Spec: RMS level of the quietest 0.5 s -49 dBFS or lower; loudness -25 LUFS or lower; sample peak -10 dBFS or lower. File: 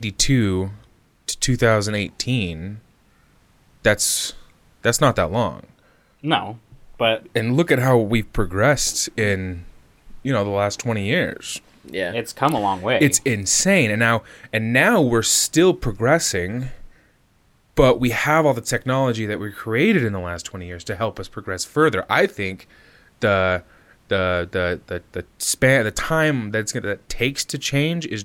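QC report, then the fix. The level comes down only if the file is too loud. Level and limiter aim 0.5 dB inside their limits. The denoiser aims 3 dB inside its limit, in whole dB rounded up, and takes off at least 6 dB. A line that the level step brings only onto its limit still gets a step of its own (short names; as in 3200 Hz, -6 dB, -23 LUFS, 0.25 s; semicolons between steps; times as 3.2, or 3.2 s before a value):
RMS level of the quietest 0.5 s -59 dBFS: OK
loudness -20.0 LUFS: fail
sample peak -4.0 dBFS: fail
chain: gain -5.5 dB; limiter -10.5 dBFS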